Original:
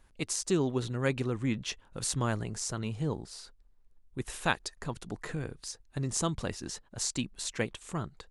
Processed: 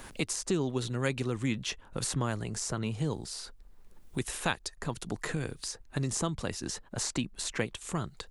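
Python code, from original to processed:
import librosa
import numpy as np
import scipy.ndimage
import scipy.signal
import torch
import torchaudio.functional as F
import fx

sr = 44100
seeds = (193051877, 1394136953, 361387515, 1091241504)

y = fx.high_shelf(x, sr, hz=8800.0, db=3.5)
y = fx.band_squash(y, sr, depth_pct=70)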